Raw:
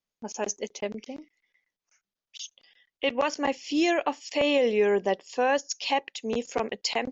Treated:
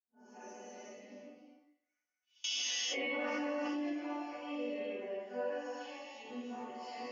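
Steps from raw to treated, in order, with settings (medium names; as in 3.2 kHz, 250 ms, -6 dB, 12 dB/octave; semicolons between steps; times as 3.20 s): phase randomisation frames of 200 ms; high-pass 98 Hz 24 dB/octave; peaking EQ 3.7 kHz -9 dB 0.37 oct; peak limiter -20.5 dBFS, peak gain reduction 10.5 dB; distance through air 140 m; chord resonator B3 minor, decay 0.32 s; thinning echo 107 ms, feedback 49%, high-pass 180 Hz, level -18 dB; gated-style reverb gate 450 ms flat, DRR -4 dB; 2.44–3.93 s: level flattener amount 100%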